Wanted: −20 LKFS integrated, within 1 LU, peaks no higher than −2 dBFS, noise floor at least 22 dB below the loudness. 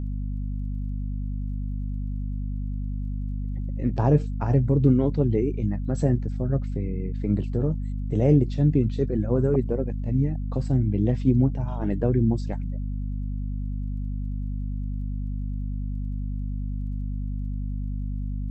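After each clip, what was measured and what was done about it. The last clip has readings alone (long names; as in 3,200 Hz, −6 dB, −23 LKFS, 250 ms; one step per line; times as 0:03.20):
crackle rate 16 per second; mains hum 50 Hz; hum harmonics up to 250 Hz; level of the hum −26 dBFS; integrated loudness −26.5 LKFS; sample peak −7.5 dBFS; target loudness −20.0 LKFS
→ click removal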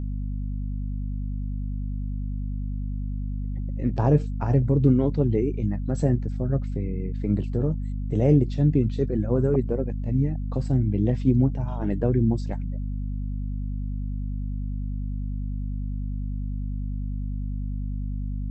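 crackle rate 0 per second; mains hum 50 Hz; hum harmonics up to 250 Hz; level of the hum −26 dBFS
→ mains-hum notches 50/100/150/200/250 Hz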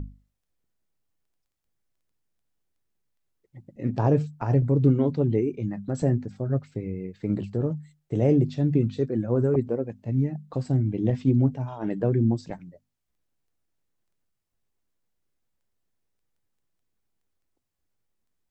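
mains hum none found; integrated loudness −25.5 LKFS; sample peak −9.0 dBFS; target loudness −20.0 LKFS
→ level +5.5 dB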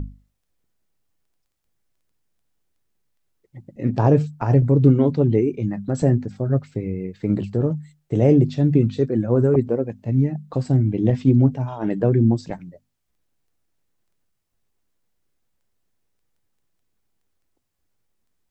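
integrated loudness −20.0 LKFS; sample peak −3.5 dBFS; background noise floor −74 dBFS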